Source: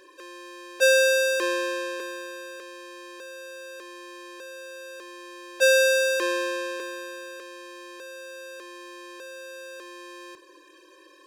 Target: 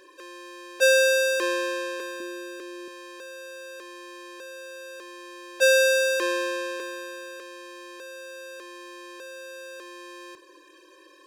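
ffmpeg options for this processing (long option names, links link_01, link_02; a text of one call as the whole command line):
ffmpeg -i in.wav -filter_complex "[0:a]asettb=1/sr,asplit=3[link_01][link_02][link_03];[link_01]atrim=end=2.204[link_04];[link_02]atrim=start=2.2:end=2.88,asetpts=PTS-STARTPTS,afade=type=in:duration=0.004:curve=qsin,afade=type=out:start_time=0.676:duration=0.004:curve=qsin,lowshelf=frequency=410:width_type=q:width=1.5:gain=9[link_05];[link_03]atrim=start=2.876[link_06];[link_04][link_05]acrossfade=duration=0.004:curve1=hsin:curve2=qsin[link_07];[link_07][link_06]acrossfade=duration=0.004:curve1=qsin:curve2=hsin" out.wav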